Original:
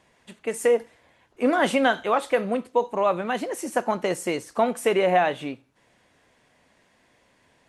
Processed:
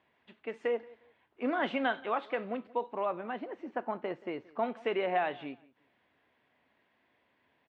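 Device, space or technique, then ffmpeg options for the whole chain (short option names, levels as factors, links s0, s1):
guitar cabinet: -filter_complex "[0:a]asettb=1/sr,asplit=3[s0][s1][s2];[s0]atrim=end=3.054[s3];[s1]atrim=start=3.05:end=4.63,asetpts=PTS-STARTPTS,afade=t=in:d=0.004:c=qsin,afade=t=out:st=1.576:d=0.004:c=qsin,lowpass=f=1600:p=1[s4];[s2]atrim=start=4.626[s5];[s3][s4]acrossfade=d=0.004:c1=hsin:c2=qsin[s6];[s6][s5]acrossfade=d=0.004:c1=qsin:c2=hsin,highpass=96,equalizer=f=120:t=q:w=4:g=-5,equalizer=f=180:t=q:w=4:g=-6,equalizer=f=520:t=q:w=4:g=-4,lowpass=f=3500:w=0.5412,lowpass=f=3500:w=1.3066,asplit=2[s7][s8];[s8]adelay=178,lowpass=f=3800:p=1,volume=0.0794,asplit=2[s9][s10];[s10]adelay=178,lowpass=f=3800:p=1,volume=0.25[s11];[s7][s9][s11]amix=inputs=3:normalize=0,volume=0.355"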